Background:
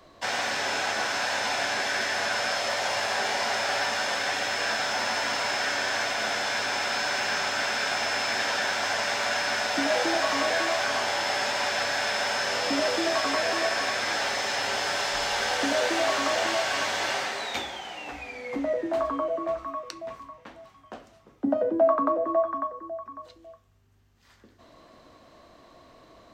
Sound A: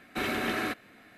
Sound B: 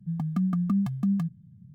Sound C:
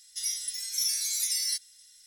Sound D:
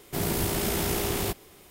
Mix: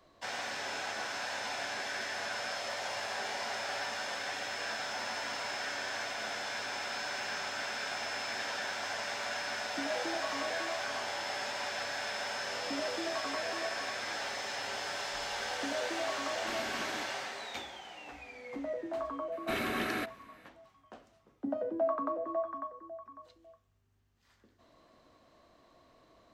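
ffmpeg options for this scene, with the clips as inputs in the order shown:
ffmpeg -i bed.wav -i cue0.wav -filter_complex "[1:a]asplit=2[link_01][link_02];[0:a]volume=-10dB[link_03];[link_01]atrim=end=1.17,asetpts=PTS-STARTPTS,volume=-12dB,afade=type=in:duration=0.004:curve=hsin,afade=type=out:start_time=1.166:duration=0.004:curve=hsin,adelay=16310[link_04];[link_02]atrim=end=1.17,asetpts=PTS-STARTPTS,volume=-3.5dB,afade=type=in:duration=0.004:curve=hsin,afade=type=out:start_time=1.166:duration=0.004:curve=hsin,adelay=19320[link_05];[link_03][link_04][link_05]amix=inputs=3:normalize=0" out.wav

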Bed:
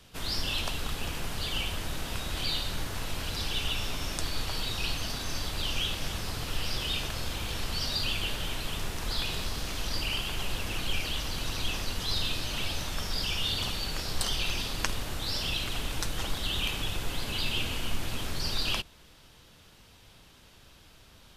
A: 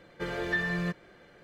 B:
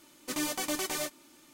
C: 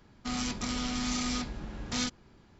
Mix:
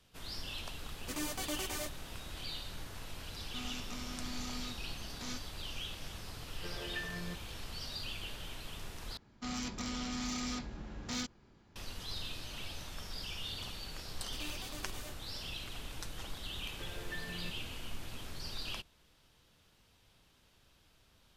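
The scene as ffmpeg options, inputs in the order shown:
ffmpeg -i bed.wav -i cue0.wav -i cue1.wav -i cue2.wav -filter_complex "[2:a]asplit=2[link_01][link_02];[3:a]asplit=2[link_03][link_04];[1:a]asplit=2[link_05][link_06];[0:a]volume=-11.5dB[link_07];[link_04]asoftclip=type=tanh:threshold=-24dB[link_08];[link_06]crystalizer=i=2:c=0[link_09];[link_07]asplit=2[link_10][link_11];[link_10]atrim=end=9.174[link_12];[link_08]atrim=end=2.59,asetpts=PTS-STARTPTS,volume=-5dB[link_13];[link_11]atrim=start=11.756[link_14];[link_01]atrim=end=1.53,asetpts=PTS-STARTPTS,volume=-6.5dB,afade=type=in:duration=0.004:curve=hsin,afade=type=out:start_time=1.526:duration=0.004:curve=hsin,adelay=800[link_15];[link_03]atrim=end=2.59,asetpts=PTS-STARTPTS,volume=-12dB,afade=type=in:duration=0.004:curve=hsin,afade=type=out:start_time=2.586:duration=0.004:curve=hsin,adelay=145089S[link_16];[link_05]atrim=end=1.43,asetpts=PTS-STARTPTS,volume=-12.5dB,afade=type=in:duration=0.004:curve=hsin,afade=type=out:start_time=1.426:duration=0.004:curve=hsin,adelay=6430[link_17];[link_02]atrim=end=1.53,asetpts=PTS-STARTPTS,volume=-16dB,afade=type=in:duration=0.004:curve=hsin,afade=type=out:start_time=1.526:duration=0.004:curve=hsin,adelay=14040[link_18];[link_09]atrim=end=1.43,asetpts=PTS-STARTPTS,volume=-16.5dB,afade=type=in:duration=0.004:curve=hsin,afade=type=out:start_time=1.426:duration=0.004:curve=hsin,adelay=16590[link_19];[link_12][link_13]acrossfade=duration=0.004:curve1=hsin:curve2=hsin[link_20];[link_20][link_14]acrossfade=duration=0.004:curve1=hsin:curve2=hsin[link_21];[link_21][link_15][link_16][link_17][link_18][link_19]amix=inputs=6:normalize=0" out.wav

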